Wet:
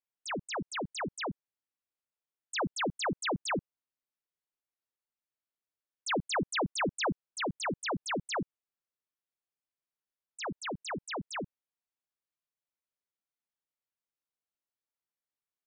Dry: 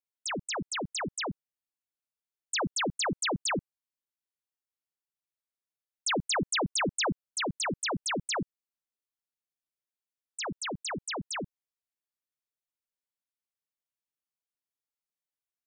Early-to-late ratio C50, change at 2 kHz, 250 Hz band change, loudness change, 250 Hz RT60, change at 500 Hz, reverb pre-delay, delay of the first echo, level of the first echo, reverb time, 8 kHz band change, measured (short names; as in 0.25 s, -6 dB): none, -2.5 dB, -1.5 dB, -3.0 dB, none, -1.0 dB, none, none, none, none, -8.5 dB